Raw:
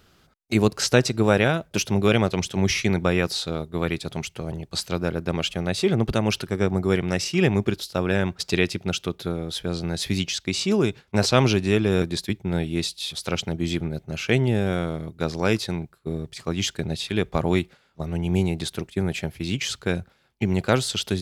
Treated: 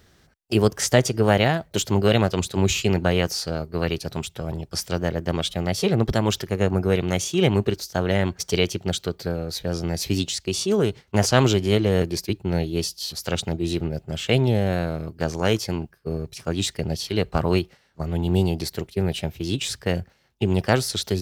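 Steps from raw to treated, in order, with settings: formant shift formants +3 st; peaking EQ 71 Hz +5 dB 1.6 oct

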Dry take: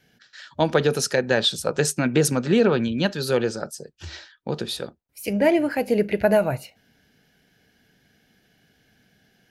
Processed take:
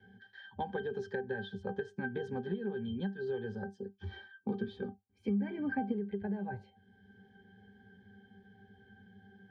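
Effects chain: low-pass 5.4 kHz 12 dB/octave; pitch-class resonator G, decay 0.15 s; dynamic bell 1.5 kHz, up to +3 dB, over -50 dBFS, Q 1.1; compression 6:1, threshold -36 dBFS, peak gain reduction 15 dB; 3.71–5.91 s: small resonant body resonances 260/1200/2300 Hz, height 11 dB -> 15 dB; three bands compressed up and down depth 40%; trim +2.5 dB

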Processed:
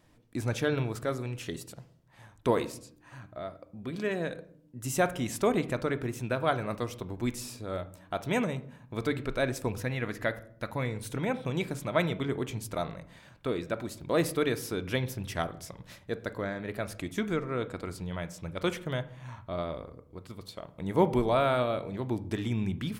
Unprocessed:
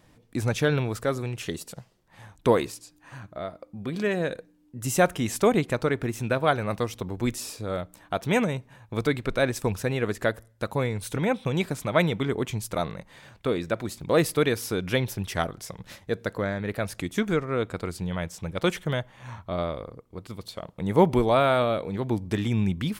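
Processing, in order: 9.80–10.86 s: graphic EQ with 31 bands 400 Hz -8 dB, 2 kHz +6 dB, 8 kHz -8 dB; on a send: reverberation RT60 0.60 s, pre-delay 3 ms, DRR 11 dB; on the sum: trim -5.5 dB

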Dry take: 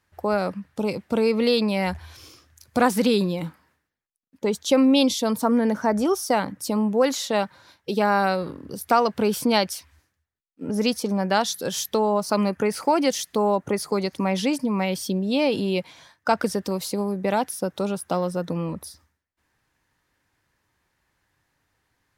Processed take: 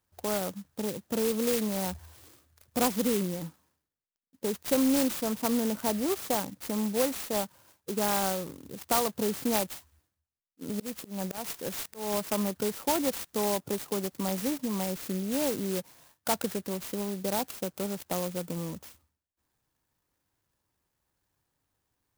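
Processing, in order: 10.64–12.23 s: slow attack 203 ms; sampling jitter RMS 0.13 ms; trim -7.5 dB

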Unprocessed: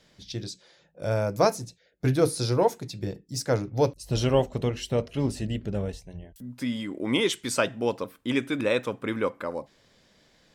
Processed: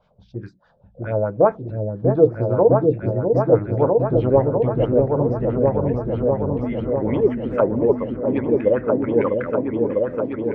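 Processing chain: low-pass that closes with the level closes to 2.2 kHz, closed at -24 dBFS; vibrato 3.9 Hz 21 cents; LFO low-pass sine 4.8 Hz 440–2000 Hz; touch-sensitive phaser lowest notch 310 Hz, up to 3.8 kHz, full sweep at -17.5 dBFS; delay with an opening low-pass 650 ms, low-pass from 400 Hz, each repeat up 2 oct, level 0 dB; trim +2.5 dB

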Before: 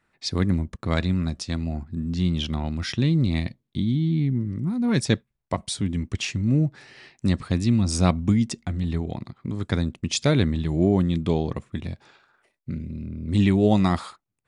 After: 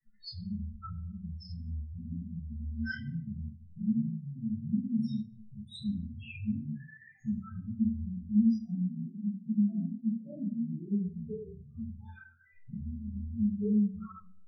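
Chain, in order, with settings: 8.62–10.73 s: elliptic band-pass 170–710 Hz; compression 10:1, threshold -33 dBFS, peak gain reduction 20 dB; loudest bins only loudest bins 2; feedback comb 220 Hz, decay 0.19 s, harmonics all, mix 100%; simulated room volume 37 m³, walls mixed, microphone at 2.9 m; three-phase chorus; trim +7 dB

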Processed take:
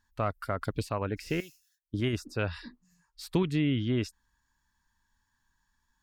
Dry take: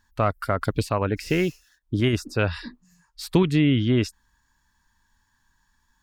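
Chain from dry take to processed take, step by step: 1.40–1.94 s: pre-emphasis filter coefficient 0.9; trim -8 dB

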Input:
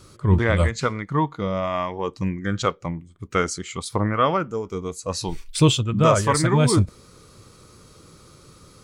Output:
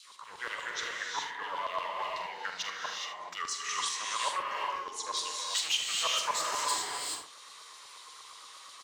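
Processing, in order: dynamic bell 1.6 kHz, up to -5 dB, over -35 dBFS, Q 0.96; in parallel at +1 dB: compression, threshold -30 dBFS, peak gain reduction 18 dB; on the sum: peak limiter -10 dBFS, peak gain reduction 6 dB; hard clipper -17 dBFS, distortion -12 dB; vibrato 7.5 Hz 83 cents; LFO high-pass saw down 8.4 Hz 890–4500 Hz; formant shift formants -2 st; on a send: early reflections 45 ms -10 dB, 76 ms -11.5 dB; on the sum: gated-style reverb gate 450 ms rising, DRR -1 dB; trim -9 dB

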